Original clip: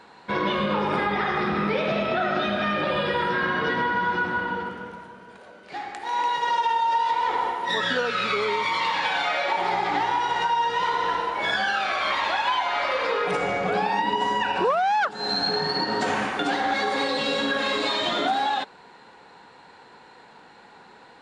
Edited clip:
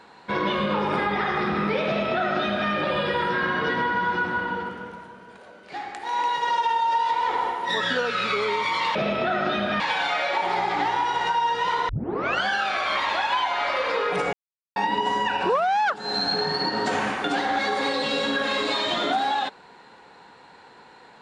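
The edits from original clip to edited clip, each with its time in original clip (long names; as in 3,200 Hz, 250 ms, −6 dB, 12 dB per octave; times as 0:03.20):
0:01.85–0:02.70: duplicate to 0:08.95
0:11.04: tape start 0.57 s
0:13.48–0:13.91: silence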